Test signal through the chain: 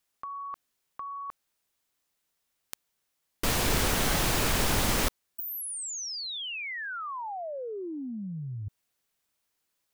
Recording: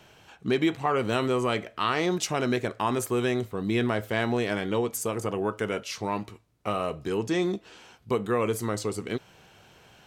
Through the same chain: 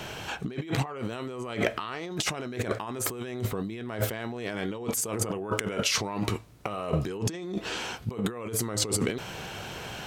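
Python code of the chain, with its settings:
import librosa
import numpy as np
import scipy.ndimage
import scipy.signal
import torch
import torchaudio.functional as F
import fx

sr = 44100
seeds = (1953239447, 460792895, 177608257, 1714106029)

y = fx.over_compress(x, sr, threshold_db=-39.0, ratio=-1.0)
y = F.gain(torch.from_numpy(y), 6.5).numpy()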